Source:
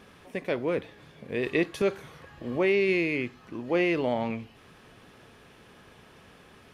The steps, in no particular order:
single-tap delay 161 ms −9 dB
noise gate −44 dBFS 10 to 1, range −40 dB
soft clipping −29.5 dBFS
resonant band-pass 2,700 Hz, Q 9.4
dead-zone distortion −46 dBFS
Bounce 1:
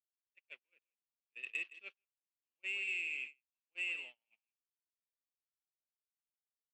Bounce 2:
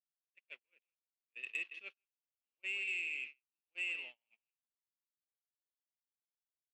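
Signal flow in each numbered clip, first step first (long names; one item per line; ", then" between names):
dead-zone distortion, then resonant band-pass, then soft clipping, then single-tap delay, then noise gate
single-tap delay, then dead-zone distortion, then resonant band-pass, then noise gate, then soft clipping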